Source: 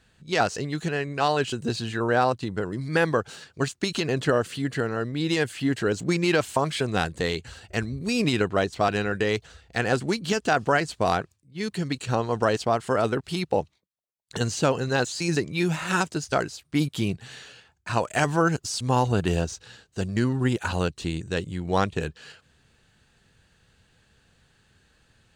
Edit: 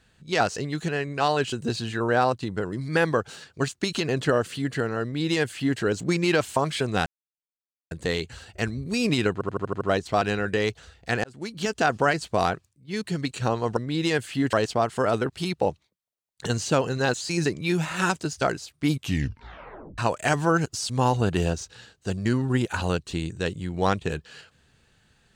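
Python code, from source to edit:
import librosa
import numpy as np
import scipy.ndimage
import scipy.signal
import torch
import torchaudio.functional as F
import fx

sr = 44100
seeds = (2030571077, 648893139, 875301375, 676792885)

y = fx.edit(x, sr, fx.duplicate(start_s=5.03, length_s=0.76, to_s=12.44),
    fx.insert_silence(at_s=7.06, length_s=0.85),
    fx.stutter(start_s=8.48, slice_s=0.08, count=7),
    fx.fade_in_span(start_s=9.91, length_s=0.55),
    fx.tape_stop(start_s=16.83, length_s=1.06), tone=tone)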